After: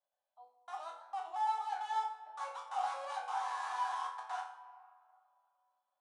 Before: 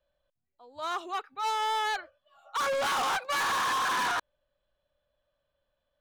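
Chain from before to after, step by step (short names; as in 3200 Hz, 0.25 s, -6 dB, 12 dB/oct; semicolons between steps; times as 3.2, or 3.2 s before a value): slices in reverse order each 0.113 s, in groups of 3; in parallel at -7 dB: wrapped overs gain 31.5 dB; on the sum: resonant high-pass 780 Hz, resonance Q 9.6; resonator bank E2 sus4, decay 0.48 s; on a send at -10 dB: reverb RT60 2.2 s, pre-delay 3 ms; on the sum: downsampling 22050 Hz; gain -3.5 dB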